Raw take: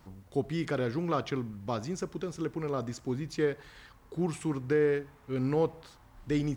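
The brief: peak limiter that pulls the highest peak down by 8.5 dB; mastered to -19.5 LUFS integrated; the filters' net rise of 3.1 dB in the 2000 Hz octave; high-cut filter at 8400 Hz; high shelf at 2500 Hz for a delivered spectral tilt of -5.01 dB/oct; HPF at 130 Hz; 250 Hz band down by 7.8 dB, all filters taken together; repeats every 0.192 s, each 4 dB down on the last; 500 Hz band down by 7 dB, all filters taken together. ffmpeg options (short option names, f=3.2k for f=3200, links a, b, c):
-af "highpass=130,lowpass=8.4k,equalizer=f=250:t=o:g=-8.5,equalizer=f=500:t=o:g=-5.5,equalizer=f=2k:t=o:g=6,highshelf=f=2.5k:g=-4,alimiter=level_in=2dB:limit=-24dB:level=0:latency=1,volume=-2dB,aecho=1:1:192|384|576|768|960|1152|1344|1536|1728:0.631|0.398|0.25|0.158|0.0994|0.0626|0.0394|0.0249|0.0157,volume=18.5dB"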